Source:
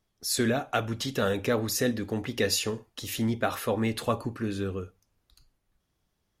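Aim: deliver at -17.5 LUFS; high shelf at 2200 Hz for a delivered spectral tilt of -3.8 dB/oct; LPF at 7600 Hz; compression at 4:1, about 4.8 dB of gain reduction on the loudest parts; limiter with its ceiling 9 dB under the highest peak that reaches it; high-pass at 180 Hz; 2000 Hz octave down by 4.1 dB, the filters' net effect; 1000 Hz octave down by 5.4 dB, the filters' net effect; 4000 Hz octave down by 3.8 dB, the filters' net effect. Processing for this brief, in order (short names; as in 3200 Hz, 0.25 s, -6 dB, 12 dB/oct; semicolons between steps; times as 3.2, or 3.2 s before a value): HPF 180 Hz; LPF 7600 Hz; bell 1000 Hz -8 dB; bell 2000 Hz -3 dB; high shelf 2200 Hz +5 dB; bell 4000 Hz -8.5 dB; compressor 4:1, threshold -29 dBFS; gain +19 dB; limiter -7 dBFS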